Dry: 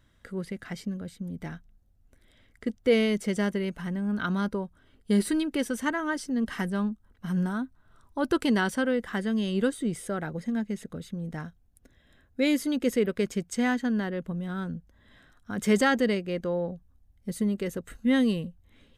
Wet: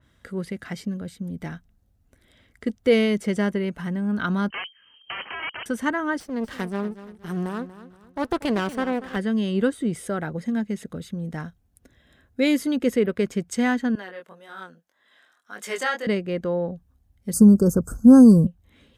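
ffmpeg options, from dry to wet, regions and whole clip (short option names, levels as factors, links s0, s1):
-filter_complex "[0:a]asettb=1/sr,asplit=3[s0][s1][s2];[s0]atrim=end=4.504[s3];[s1]atrim=start=4.5:end=5.66,asetpts=PTS-STARTPTS,afade=t=in:d=0.004:c=qsin,afade=t=out:st=1.156:d=0.004:c=qsin,aeval=exprs='(mod(26.6*val(0)+1,2)-1)/26.6':c=same,lowpass=f=2700:t=q:w=0.5098,lowpass=f=2700:t=q:w=0.6013,lowpass=f=2700:t=q:w=0.9,lowpass=f=2700:t=q:w=2.563,afreqshift=-3200[s4];[s2]atrim=start=5.656[s5];[s3][s4]acrossfade=d=0.004:c1=hsin:c2=qsin[s6];[s6][s5]acrossfade=d=0.004:c1=qsin:c2=hsin,asettb=1/sr,asplit=3[s7][s8][s9];[s7]atrim=end=6.204[s10];[s8]atrim=start=6.2:end=9.16,asetpts=PTS-STARTPTS,afade=t=in:d=0.004:c=qsin,afade=t=out:st=2.956:d=0.004:c=qsin,aeval=exprs='max(val(0),0)':c=same,aecho=1:1:237|474|711:0.188|0.0697|0.0258,atrim=end_sample=130536[s11];[s9]atrim=start=9.156[s12];[s10][s11]acrossfade=d=0.004:c1=hsin:c2=qsin[s13];[s13][s12]acrossfade=d=0.004:c1=qsin:c2=hsin,asettb=1/sr,asplit=3[s14][s15][s16];[s14]atrim=end=13.954[s17];[s15]atrim=start=13.95:end=16.07,asetpts=PTS-STARTPTS,afade=t=in:d=0.004:c=qsin,afade=t=out:st=2.116:d=0.004:c=qsin,flanger=delay=19:depth=5:speed=1.8,highpass=660[s18];[s16]atrim=start=16.066[s19];[s17][s18]acrossfade=d=0.004:c1=hsin:c2=qsin[s20];[s20][s19]acrossfade=d=0.004:c1=qsin:c2=hsin,asettb=1/sr,asplit=3[s21][s22][s23];[s21]atrim=end=17.334[s24];[s22]atrim=start=17.33:end=18.47,asetpts=PTS-STARTPTS,afade=t=in:d=0.004:c=qsin,afade=t=out:st=1.136:d=0.004:c=qsin,bass=f=250:g=9,treble=f=4000:g=7,acontrast=32,asuperstop=centerf=2700:order=20:qfactor=0.84[s25];[s23]atrim=start=18.466[s26];[s24][s25]acrossfade=d=0.004:c1=hsin:c2=qsin[s27];[s27][s26]acrossfade=d=0.004:c1=qsin:c2=hsin,highpass=47,adynamicequalizer=threshold=0.00501:dfrequency=2900:dqfactor=0.7:tfrequency=2900:tqfactor=0.7:attack=5:release=100:ratio=0.375:range=4:mode=cutabove:tftype=highshelf,volume=1.58"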